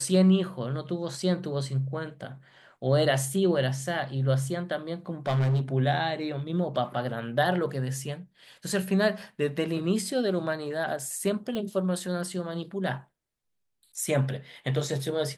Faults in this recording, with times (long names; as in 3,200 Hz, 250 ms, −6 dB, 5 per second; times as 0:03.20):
0:05.27–0:05.61: clipping −21.5 dBFS
0:11.55: click −20 dBFS